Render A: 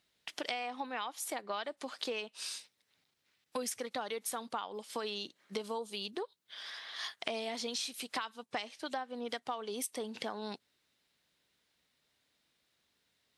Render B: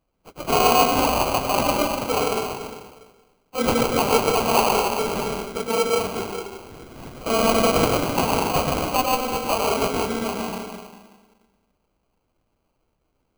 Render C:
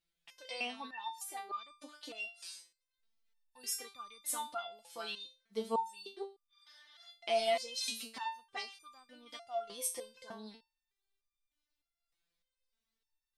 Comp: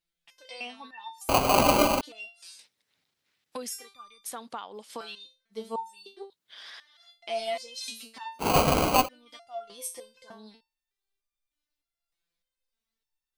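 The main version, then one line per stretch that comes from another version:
C
1.29–2.01 from B
2.59–3.7 from A
4.24–5.01 from A
6.3–6.8 from A
8.44–9.04 from B, crossfade 0.10 s

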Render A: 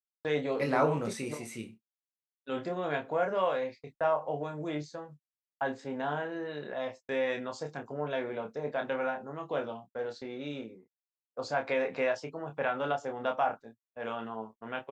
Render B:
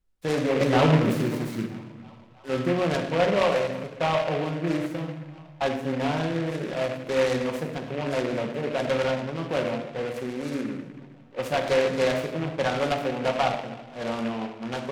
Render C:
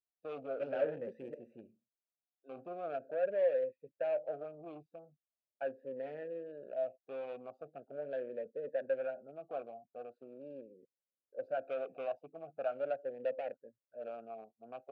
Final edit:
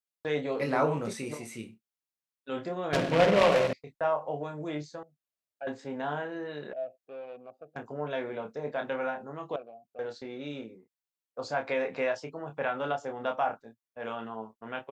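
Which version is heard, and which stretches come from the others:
A
2.93–3.73 from B
5.03–5.67 from C
6.73–7.76 from C
9.56–9.99 from C

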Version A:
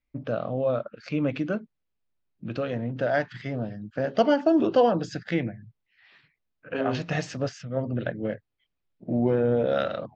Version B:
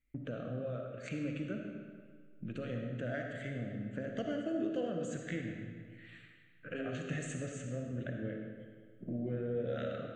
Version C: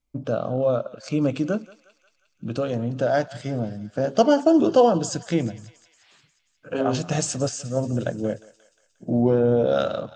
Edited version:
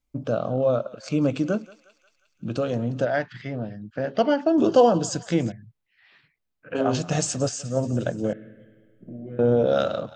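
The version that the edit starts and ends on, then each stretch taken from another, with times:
C
3.05–4.58 from A
5.52–6.75 from A
8.33–9.39 from B

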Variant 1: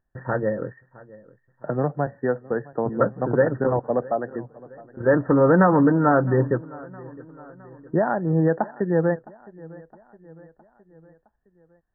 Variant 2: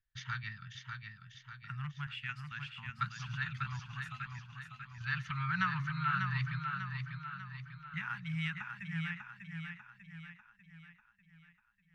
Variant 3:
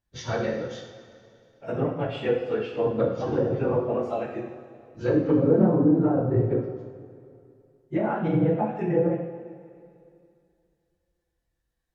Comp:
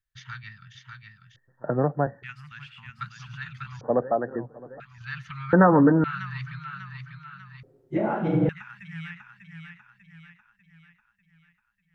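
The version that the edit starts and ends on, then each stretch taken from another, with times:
2
1.36–2.23 from 1
3.81–4.8 from 1
5.53–6.04 from 1
7.63–8.49 from 3

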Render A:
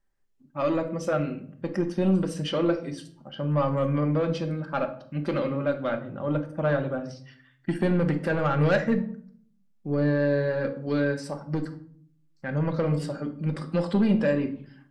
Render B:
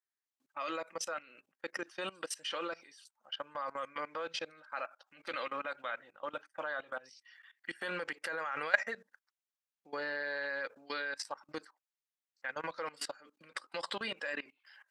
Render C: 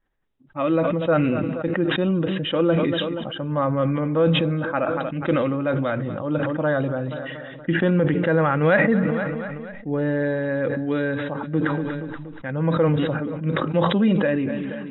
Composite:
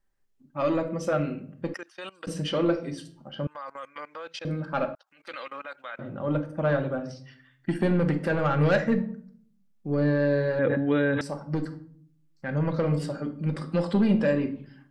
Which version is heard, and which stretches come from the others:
A
1.74–2.27 from B
3.47–4.45 from B
4.95–5.99 from B
10.59–11.21 from C

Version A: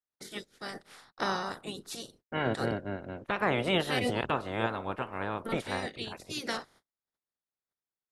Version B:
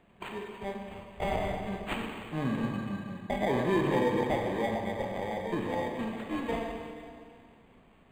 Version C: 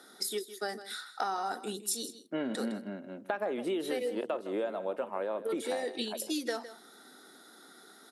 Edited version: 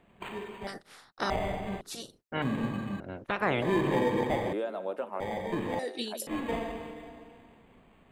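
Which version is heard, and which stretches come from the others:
B
0.67–1.3 from A
1.81–2.42 from A
3–3.62 from A
4.53–5.2 from C
5.79–6.27 from C

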